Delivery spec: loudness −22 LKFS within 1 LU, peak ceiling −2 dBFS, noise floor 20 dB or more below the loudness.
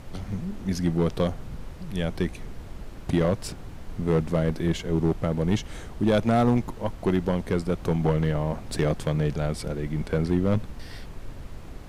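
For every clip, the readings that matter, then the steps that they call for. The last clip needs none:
share of clipped samples 0.8%; peaks flattened at −14.5 dBFS; background noise floor −41 dBFS; target noise floor −47 dBFS; integrated loudness −26.5 LKFS; sample peak −14.5 dBFS; target loudness −22.0 LKFS
→ clipped peaks rebuilt −14.5 dBFS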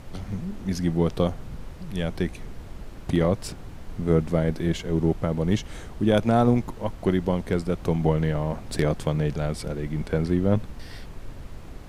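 share of clipped samples 0.0%; background noise floor −41 dBFS; target noise floor −46 dBFS
→ noise reduction from a noise print 6 dB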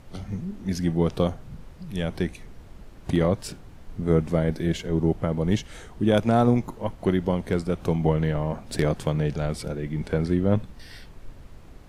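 background noise floor −46 dBFS; integrated loudness −25.5 LKFS; sample peak −7.0 dBFS; target loudness −22.0 LKFS
→ level +3.5 dB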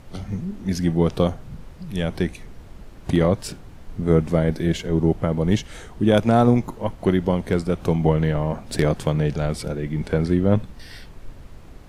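integrated loudness −22.0 LKFS; sample peak −3.5 dBFS; background noise floor −43 dBFS

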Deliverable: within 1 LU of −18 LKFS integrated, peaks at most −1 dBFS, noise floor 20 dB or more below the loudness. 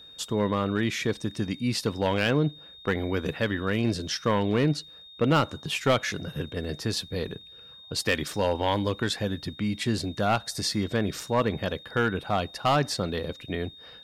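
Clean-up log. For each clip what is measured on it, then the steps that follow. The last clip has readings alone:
share of clipped samples 0.6%; peaks flattened at −15.5 dBFS; interfering tone 3,700 Hz; level of the tone −46 dBFS; integrated loudness −28.0 LKFS; sample peak −15.5 dBFS; target loudness −18.0 LKFS
→ clipped peaks rebuilt −15.5 dBFS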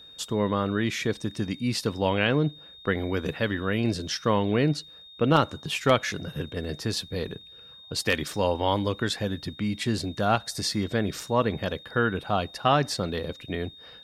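share of clipped samples 0.0%; interfering tone 3,700 Hz; level of the tone −46 dBFS
→ notch filter 3,700 Hz, Q 30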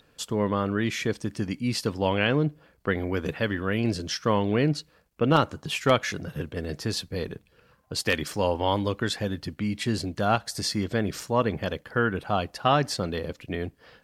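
interfering tone none found; integrated loudness −27.0 LKFS; sample peak −7.0 dBFS; target loudness −18.0 LKFS
→ level +9 dB
brickwall limiter −1 dBFS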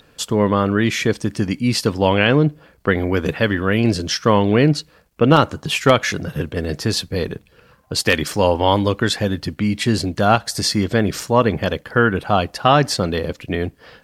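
integrated loudness −18.5 LKFS; sample peak −1.0 dBFS; background noise floor −53 dBFS

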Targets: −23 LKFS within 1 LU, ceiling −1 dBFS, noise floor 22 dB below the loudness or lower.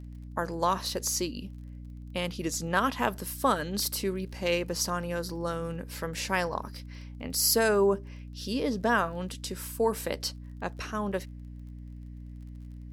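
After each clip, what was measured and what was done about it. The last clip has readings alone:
crackle rate 29 per second; mains hum 60 Hz; hum harmonics up to 300 Hz; level of the hum −40 dBFS; integrated loudness −30.0 LKFS; sample peak −10.5 dBFS; target loudness −23.0 LKFS
→ click removal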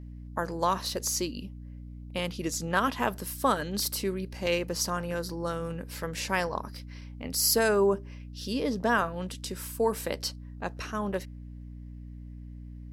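crackle rate 0 per second; mains hum 60 Hz; hum harmonics up to 300 Hz; level of the hum −40 dBFS
→ hum removal 60 Hz, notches 5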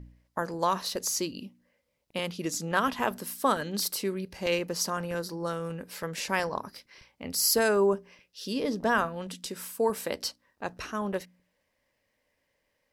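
mains hum none found; integrated loudness −30.0 LKFS; sample peak −11.5 dBFS; target loudness −23.0 LKFS
→ level +7 dB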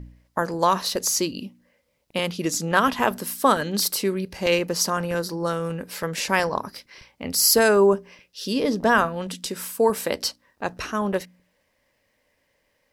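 integrated loudness −23.0 LKFS; sample peak −4.5 dBFS; background noise floor −70 dBFS

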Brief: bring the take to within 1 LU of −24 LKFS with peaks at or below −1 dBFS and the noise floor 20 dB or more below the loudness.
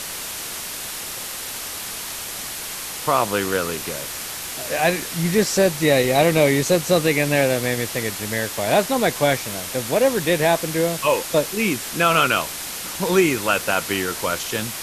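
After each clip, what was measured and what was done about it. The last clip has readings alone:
background noise floor −31 dBFS; target noise floor −41 dBFS; integrated loudness −21.0 LKFS; sample peak −3.5 dBFS; target loudness −24.0 LKFS
→ noise reduction from a noise print 10 dB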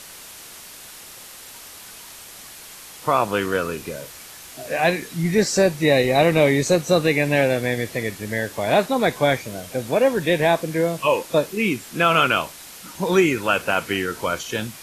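background noise floor −41 dBFS; integrated loudness −20.5 LKFS; sample peak −4.0 dBFS; target loudness −24.0 LKFS
→ level −3.5 dB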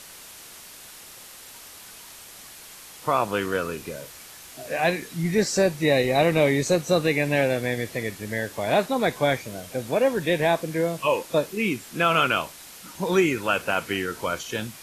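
integrated loudness −24.0 LKFS; sample peak −7.5 dBFS; background noise floor −45 dBFS

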